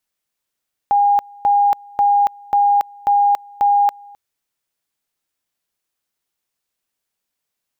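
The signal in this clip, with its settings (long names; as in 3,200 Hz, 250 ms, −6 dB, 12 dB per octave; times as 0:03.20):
tone at two levels in turn 813 Hz −10.5 dBFS, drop 26.5 dB, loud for 0.28 s, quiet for 0.26 s, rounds 6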